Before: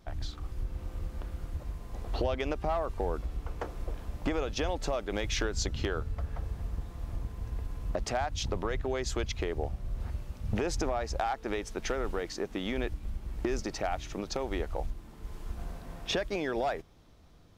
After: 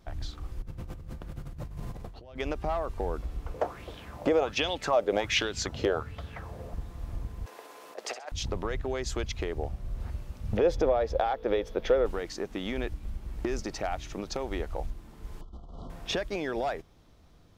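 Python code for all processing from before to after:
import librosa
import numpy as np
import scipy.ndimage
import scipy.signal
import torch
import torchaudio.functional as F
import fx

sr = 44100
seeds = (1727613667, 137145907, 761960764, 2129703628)

y = fx.chain(x, sr, fx.peak_eq(hz=140.0, db=9.5, octaves=0.84),
    fx.over_compress(threshold_db=-41.0, ratio=-1.0), at=(0.62, 2.38))
y = fx.chain(y, sr, fx.highpass(hz=91.0, slope=12),
    fx.bell_lfo(hz=1.3, low_hz=490.0, high_hz=3600.0, db=15), at=(3.54, 6.74))
y = fx.chain(y, sr, fx.highpass(hz=410.0, slope=24),
    fx.over_compress(threshold_db=-38.0, ratio=-0.5),
    fx.room_flutter(wall_m=11.2, rt60_s=0.37), at=(7.46, 8.32))
y = fx.chain(y, sr, fx.peak_eq(hz=8100.0, db=-15.0, octaves=1.1),
    fx.small_body(hz=(510.0, 3400.0), ring_ms=25, db=14), at=(10.57, 12.06))
y = fx.chain(y, sr, fx.over_compress(threshold_db=-43.0, ratio=-1.0),
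    fx.brickwall_bandstop(low_hz=1400.0, high_hz=2900.0),
    fx.air_absorb(metres=140.0), at=(15.41, 15.9))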